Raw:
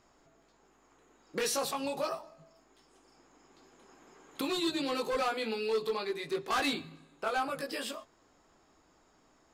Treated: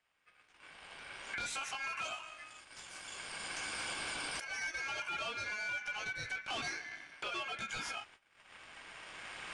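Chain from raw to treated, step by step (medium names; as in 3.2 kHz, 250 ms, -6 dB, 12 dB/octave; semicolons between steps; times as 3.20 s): recorder AGC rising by 11 dB/s; gate -59 dBFS, range -18 dB; treble shelf 3.6 kHz -3.5 dB, from 2.01 s +8 dB, from 4.44 s -4.5 dB; compression 12:1, threshold -39 dBFS, peak gain reduction 18.5 dB; Chebyshev shaper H 8 -24 dB, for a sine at -39 dBFS; ring modulator 1.9 kHz; resampled via 22.05 kHz; trim +6.5 dB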